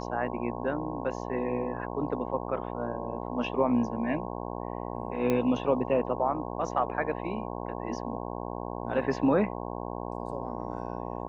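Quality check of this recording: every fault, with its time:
mains buzz 60 Hz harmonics 18 −36 dBFS
0:05.30: click −15 dBFS

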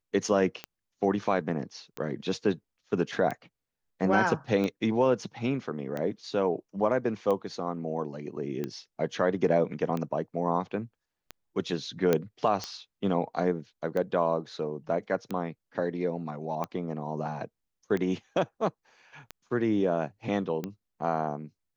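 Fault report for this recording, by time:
scratch tick 45 rpm −20 dBFS
0:12.13: click −11 dBFS

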